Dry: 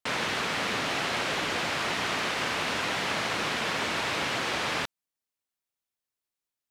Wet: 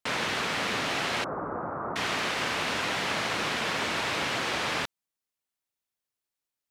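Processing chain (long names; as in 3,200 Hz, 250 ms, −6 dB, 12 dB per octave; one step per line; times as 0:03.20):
0:01.24–0:01.96: elliptic low-pass filter 1,300 Hz, stop band 60 dB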